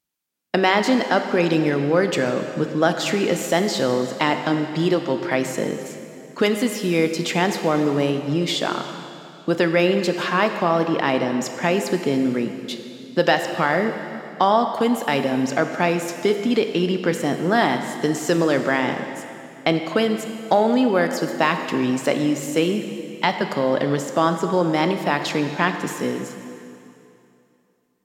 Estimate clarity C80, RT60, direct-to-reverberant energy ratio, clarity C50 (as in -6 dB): 8.0 dB, 2.7 s, 6.5 dB, 7.5 dB